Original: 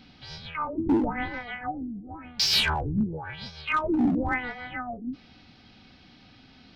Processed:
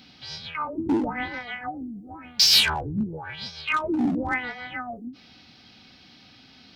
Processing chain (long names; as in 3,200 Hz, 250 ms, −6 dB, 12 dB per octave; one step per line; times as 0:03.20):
high-pass filter 100 Hz 6 dB per octave
high-shelf EQ 3,700 Hz +10.5 dB
every ending faded ahead of time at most 220 dB per second